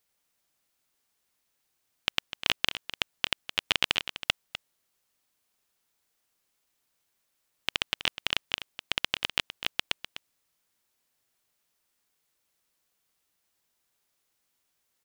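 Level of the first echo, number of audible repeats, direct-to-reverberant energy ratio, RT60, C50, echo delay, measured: -12.0 dB, 1, none, none, none, 0.251 s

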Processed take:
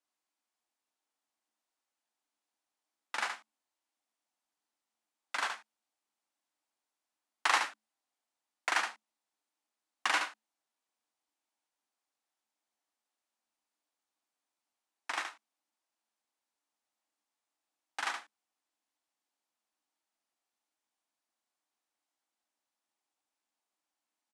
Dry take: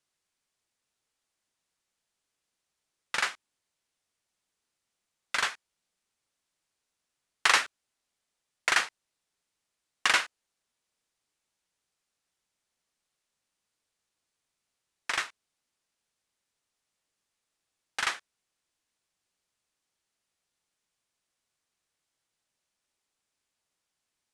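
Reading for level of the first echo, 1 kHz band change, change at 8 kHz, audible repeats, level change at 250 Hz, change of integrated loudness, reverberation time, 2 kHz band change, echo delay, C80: -6.5 dB, -2.0 dB, -8.0 dB, 1, -3.5 dB, -6.5 dB, none, -6.0 dB, 72 ms, none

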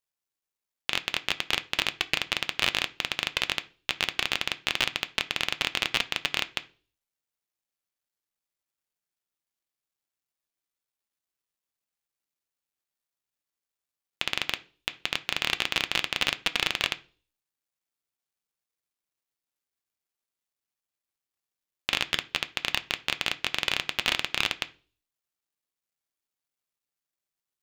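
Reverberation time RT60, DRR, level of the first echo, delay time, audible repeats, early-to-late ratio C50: 0.40 s, 9.5 dB, none, none, none, 19.5 dB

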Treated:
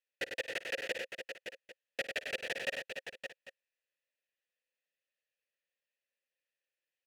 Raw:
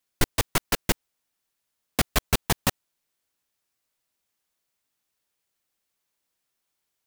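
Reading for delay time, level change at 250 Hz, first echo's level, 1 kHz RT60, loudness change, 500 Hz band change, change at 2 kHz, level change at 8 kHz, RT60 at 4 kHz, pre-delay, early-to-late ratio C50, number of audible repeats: 53 ms, -22.5 dB, -17.0 dB, none, -12.5 dB, -6.5 dB, -4.5 dB, -21.0 dB, none, none, none, 5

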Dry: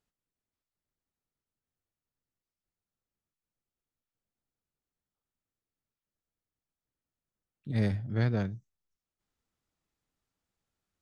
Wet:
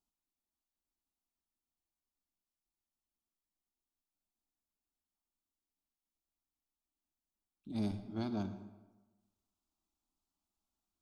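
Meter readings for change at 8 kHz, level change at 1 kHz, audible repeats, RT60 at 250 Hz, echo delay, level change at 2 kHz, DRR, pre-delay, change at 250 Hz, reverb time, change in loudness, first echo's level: n/a, -3.5 dB, none, 1.2 s, none, -16.0 dB, 10.0 dB, 38 ms, -4.0 dB, 1.2 s, -8.5 dB, none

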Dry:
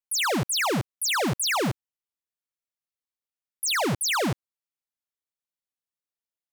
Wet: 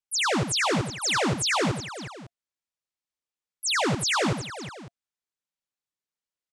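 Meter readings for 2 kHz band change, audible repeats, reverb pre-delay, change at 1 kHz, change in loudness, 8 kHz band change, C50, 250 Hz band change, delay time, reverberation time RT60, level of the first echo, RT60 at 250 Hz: +1.0 dB, 3, none, +0.5 dB, 0.0 dB, -0.5 dB, none, +1.0 dB, 88 ms, none, -8.5 dB, none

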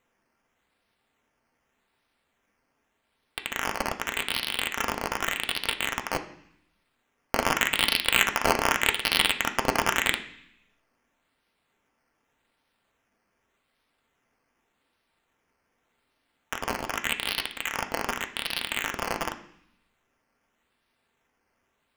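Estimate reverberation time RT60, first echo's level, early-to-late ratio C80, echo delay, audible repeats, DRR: 0.65 s, none, 15.5 dB, none, none, 4.5 dB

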